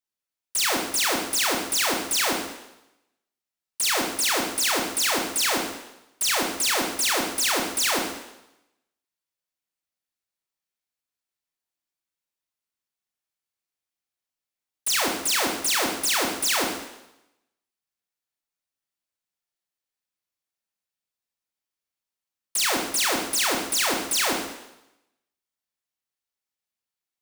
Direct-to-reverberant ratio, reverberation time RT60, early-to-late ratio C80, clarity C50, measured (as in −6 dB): −0.5 dB, 0.90 s, 6.0 dB, 3.0 dB